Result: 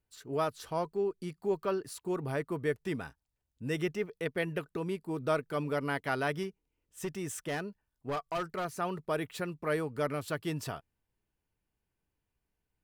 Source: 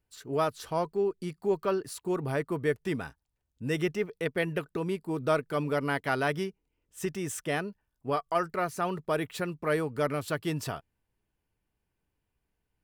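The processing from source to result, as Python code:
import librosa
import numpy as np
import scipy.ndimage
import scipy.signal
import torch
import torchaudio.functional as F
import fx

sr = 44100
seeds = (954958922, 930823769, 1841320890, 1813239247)

y = fx.clip_hard(x, sr, threshold_db=-26.0, at=(6.43, 8.65))
y = y * librosa.db_to_amplitude(-3.5)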